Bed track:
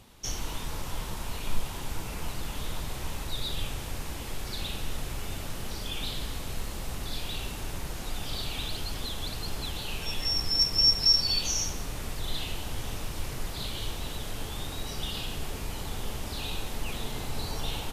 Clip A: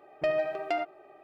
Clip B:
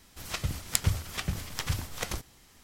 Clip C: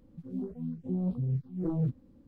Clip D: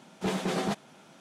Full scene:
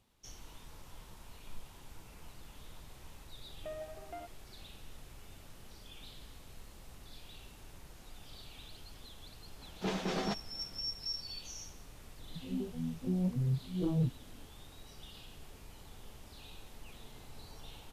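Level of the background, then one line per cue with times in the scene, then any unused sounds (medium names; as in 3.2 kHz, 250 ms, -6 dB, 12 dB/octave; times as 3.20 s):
bed track -17.5 dB
3.42 s: add A -16 dB + low-pass 1.6 kHz
9.60 s: add D -5.5 dB + resonant high shelf 7.6 kHz -9.5 dB, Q 1.5
12.18 s: add C -1.5 dB
not used: B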